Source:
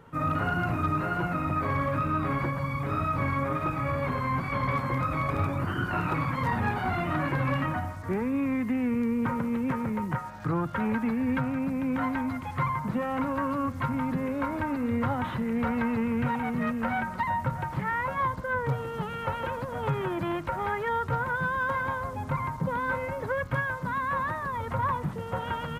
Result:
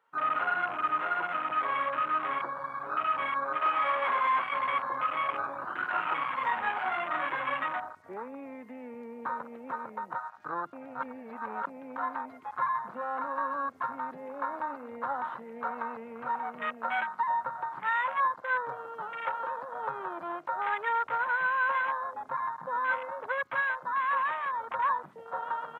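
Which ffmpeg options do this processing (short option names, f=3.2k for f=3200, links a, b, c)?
-filter_complex "[0:a]asettb=1/sr,asplit=3[a][b][c];[a]atrim=end=3.624[d];[b]atrim=start=3.62:end=4.44,asetpts=PTS-STARTPTS,afade=t=in:d=0.004:c=qsin,afade=t=out:st=0.816:d=0.004:c=qsin,asplit=2[e][f];[f]highpass=f=720:p=1,volume=15dB,asoftclip=type=tanh:threshold=-18.5dB[g];[e][g]amix=inputs=2:normalize=0,lowpass=f=2k:p=1,volume=-6dB[h];[c]atrim=start=4.436[i];[d][h]acrossfade=d=0.004:c1=hsin:c2=qsin[j];[j][i]acrossfade=d=0.004:c1=qsin:c2=hsin,asplit=3[k][l][m];[k]atrim=end=10.732[n];[l]atrim=start=10.728:end=11.672,asetpts=PTS-STARTPTS,areverse[o];[m]atrim=start=11.668[p];[n][o]acrossfade=d=0.004:c1=hsin:c2=hsin[q];[q][p]acrossfade=d=0.004:c1=hsin:c2=hsin,afwtdn=0.0251,highpass=890,highshelf=f=3.8k:g=-6.5,volume=3.5dB"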